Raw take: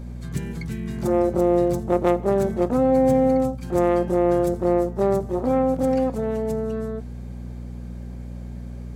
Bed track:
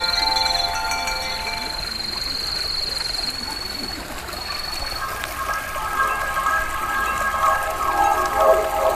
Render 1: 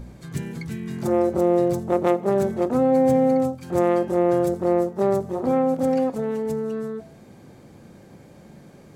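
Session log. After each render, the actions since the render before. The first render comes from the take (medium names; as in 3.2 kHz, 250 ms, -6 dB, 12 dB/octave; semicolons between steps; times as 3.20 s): de-hum 60 Hz, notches 11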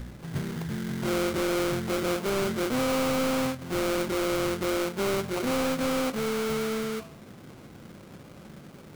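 sample-rate reducer 1.8 kHz, jitter 20%; saturation -23.5 dBFS, distortion -7 dB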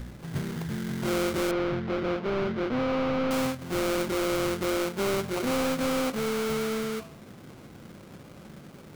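1.51–3.31 s: distance through air 270 m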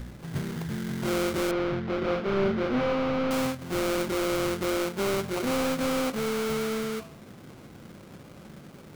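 1.98–2.93 s: doubling 36 ms -3 dB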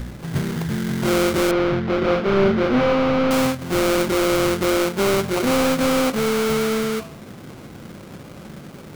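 trim +8.5 dB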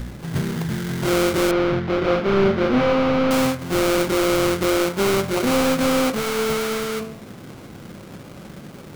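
de-hum 73.75 Hz, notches 34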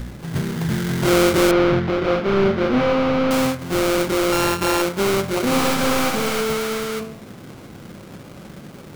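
0.62–1.90 s: gain +3.5 dB; 4.32–4.82 s: sorted samples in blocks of 32 samples; 5.45–6.41 s: flutter echo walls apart 11.6 m, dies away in 1.1 s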